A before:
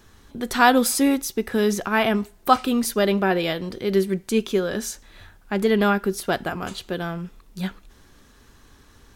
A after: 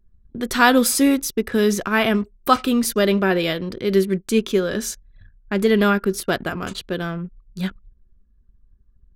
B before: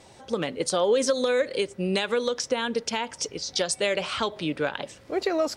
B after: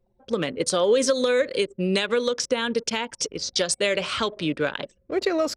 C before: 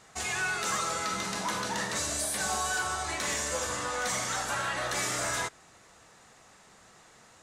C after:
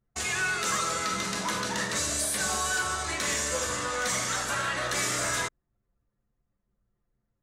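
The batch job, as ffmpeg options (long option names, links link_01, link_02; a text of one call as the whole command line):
ffmpeg -i in.wav -af "anlmdn=0.631,equalizer=frequency=800:width_type=o:width=0.45:gain=-7,volume=3dB" out.wav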